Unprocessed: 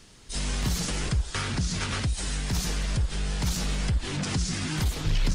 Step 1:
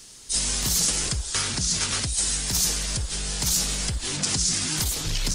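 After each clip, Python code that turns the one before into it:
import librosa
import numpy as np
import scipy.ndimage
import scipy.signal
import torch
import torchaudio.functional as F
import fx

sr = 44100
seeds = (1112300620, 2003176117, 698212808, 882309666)

y = fx.bass_treble(x, sr, bass_db=-4, treble_db=14)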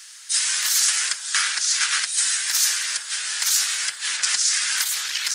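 y = fx.highpass_res(x, sr, hz=1600.0, q=2.7)
y = F.gain(torch.from_numpy(y), 3.0).numpy()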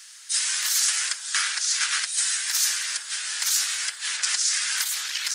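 y = fx.low_shelf(x, sr, hz=180.0, db=-9.5)
y = F.gain(torch.from_numpy(y), -3.0).numpy()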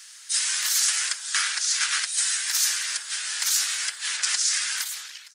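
y = fx.fade_out_tail(x, sr, length_s=0.78)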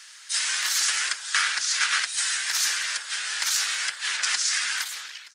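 y = fx.lowpass(x, sr, hz=3000.0, slope=6)
y = F.gain(torch.from_numpy(y), 5.0).numpy()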